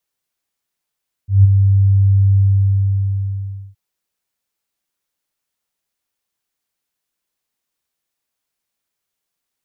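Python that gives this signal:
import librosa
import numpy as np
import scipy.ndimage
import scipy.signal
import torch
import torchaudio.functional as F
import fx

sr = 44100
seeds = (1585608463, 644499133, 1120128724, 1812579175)

y = fx.adsr_tone(sr, wave='sine', hz=98.2, attack_ms=160.0, decay_ms=22.0, sustain_db=-5.5, held_s=1.09, release_ms=1380.0, level_db=-3.0)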